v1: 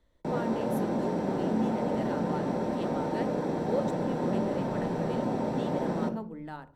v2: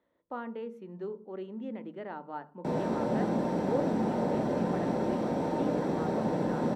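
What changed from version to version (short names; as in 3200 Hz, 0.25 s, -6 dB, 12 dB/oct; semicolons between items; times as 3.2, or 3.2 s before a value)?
speech: add BPF 230–2100 Hz; background: entry +2.40 s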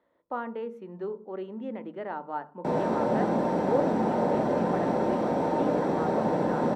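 master: add bell 900 Hz +6.5 dB 2.7 oct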